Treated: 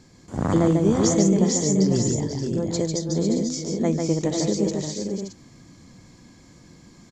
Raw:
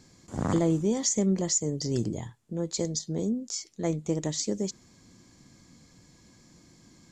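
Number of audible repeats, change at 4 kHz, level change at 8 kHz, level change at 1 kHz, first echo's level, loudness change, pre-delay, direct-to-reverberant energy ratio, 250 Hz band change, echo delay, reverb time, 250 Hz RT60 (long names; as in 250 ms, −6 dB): 5, +4.0 dB, +3.0 dB, +7.5 dB, −4.0 dB, +6.5 dB, no reverb audible, no reverb audible, +8.0 dB, 146 ms, no reverb audible, no reverb audible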